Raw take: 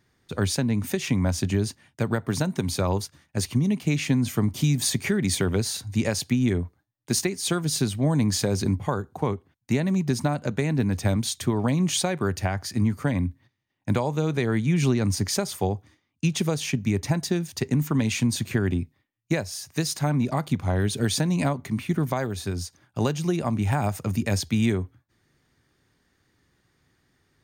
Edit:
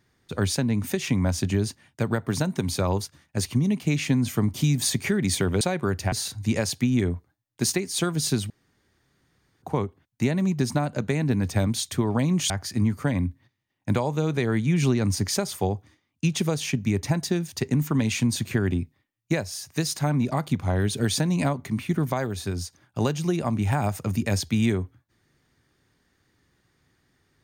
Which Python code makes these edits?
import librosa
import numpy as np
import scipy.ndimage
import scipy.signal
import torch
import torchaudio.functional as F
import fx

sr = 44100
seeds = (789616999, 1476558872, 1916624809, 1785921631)

y = fx.edit(x, sr, fx.room_tone_fill(start_s=7.99, length_s=1.12),
    fx.move(start_s=11.99, length_s=0.51, to_s=5.61), tone=tone)